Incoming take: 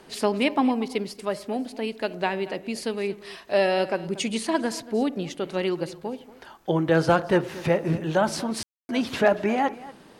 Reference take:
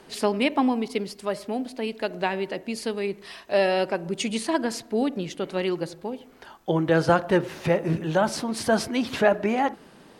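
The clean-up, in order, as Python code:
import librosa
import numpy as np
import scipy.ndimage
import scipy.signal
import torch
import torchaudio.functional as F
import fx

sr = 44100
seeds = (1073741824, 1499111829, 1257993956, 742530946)

y = fx.fix_declip(x, sr, threshold_db=-8.5)
y = fx.fix_ambience(y, sr, seeds[0], print_start_s=6.17, print_end_s=6.67, start_s=8.63, end_s=8.89)
y = fx.fix_echo_inverse(y, sr, delay_ms=233, level_db=-18.0)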